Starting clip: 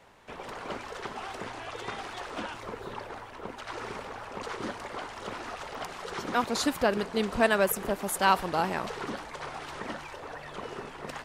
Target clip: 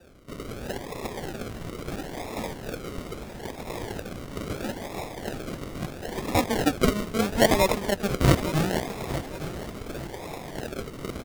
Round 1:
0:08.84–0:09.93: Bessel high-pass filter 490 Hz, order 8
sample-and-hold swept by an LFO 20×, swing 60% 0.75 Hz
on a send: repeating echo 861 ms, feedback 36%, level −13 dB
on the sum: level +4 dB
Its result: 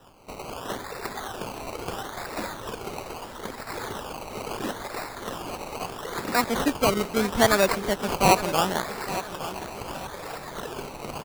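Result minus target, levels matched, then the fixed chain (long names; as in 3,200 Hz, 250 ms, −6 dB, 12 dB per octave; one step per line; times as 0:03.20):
sample-and-hold swept by an LFO: distortion −10 dB
0:08.84–0:09.93: Bessel high-pass filter 490 Hz, order 8
sample-and-hold swept by an LFO 41×, swing 60% 0.75 Hz
on a send: repeating echo 861 ms, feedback 36%, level −13 dB
on the sum: level +4 dB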